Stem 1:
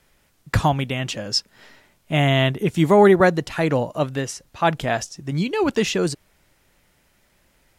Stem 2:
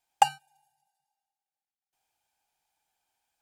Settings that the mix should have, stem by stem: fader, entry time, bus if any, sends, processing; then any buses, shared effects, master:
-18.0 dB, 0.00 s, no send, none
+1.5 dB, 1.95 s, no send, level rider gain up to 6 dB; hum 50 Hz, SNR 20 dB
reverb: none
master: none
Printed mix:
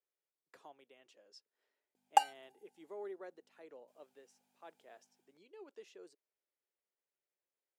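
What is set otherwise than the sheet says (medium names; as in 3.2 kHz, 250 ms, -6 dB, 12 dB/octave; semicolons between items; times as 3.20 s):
stem 1 -18.0 dB -> -28.5 dB; master: extra ladder high-pass 350 Hz, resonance 50%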